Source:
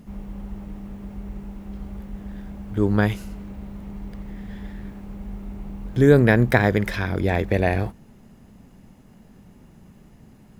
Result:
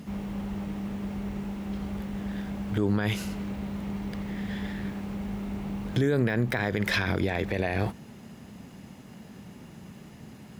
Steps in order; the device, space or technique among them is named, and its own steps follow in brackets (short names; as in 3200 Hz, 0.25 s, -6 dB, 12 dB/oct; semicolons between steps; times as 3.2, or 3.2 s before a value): broadcast voice chain (HPF 89 Hz 12 dB/oct; de-esser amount 50%; compressor 5:1, threshold -21 dBFS, peak gain reduction 11.5 dB; bell 3500 Hz +5.5 dB 2.3 oct; limiter -19.5 dBFS, peak gain reduction 11 dB); gain +4 dB